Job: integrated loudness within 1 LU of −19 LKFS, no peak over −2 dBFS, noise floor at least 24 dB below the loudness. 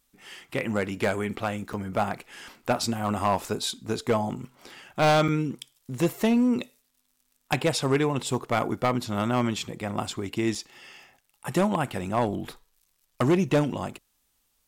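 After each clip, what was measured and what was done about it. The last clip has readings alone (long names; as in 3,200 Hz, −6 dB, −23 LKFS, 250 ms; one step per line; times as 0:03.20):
share of clipped samples 0.8%; peaks flattened at −16.0 dBFS; number of dropouts 3; longest dropout 4.5 ms; integrated loudness −27.0 LKFS; sample peak −16.0 dBFS; target loudness −19.0 LKFS
→ clipped peaks rebuilt −16 dBFS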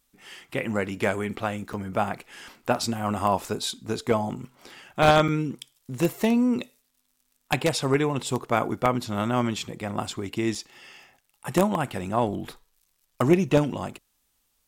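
share of clipped samples 0.0%; number of dropouts 3; longest dropout 4.5 ms
→ repair the gap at 0:01.73/0:05.28/0:10.55, 4.5 ms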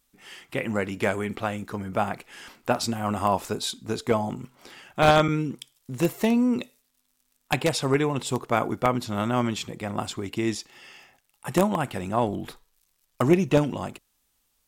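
number of dropouts 0; integrated loudness −26.0 LKFS; sample peak −7.0 dBFS; target loudness −19.0 LKFS
→ level +7 dB
brickwall limiter −2 dBFS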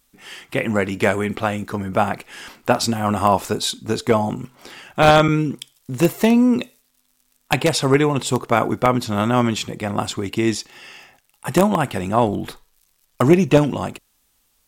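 integrated loudness −19.5 LKFS; sample peak −2.0 dBFS; background noise floor −65 dBFS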